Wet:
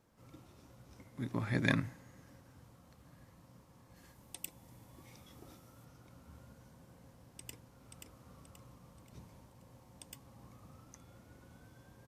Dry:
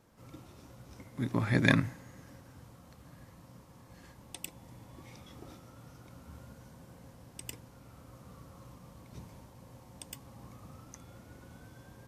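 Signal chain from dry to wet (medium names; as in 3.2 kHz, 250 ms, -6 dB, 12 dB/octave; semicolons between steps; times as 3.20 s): 3.96–5.85 s: treble shelf 8.5 kHz +9 dB; 7.26–7.97 s: echo throw 530 ms, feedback 40%, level -5 dB; trim -6 dB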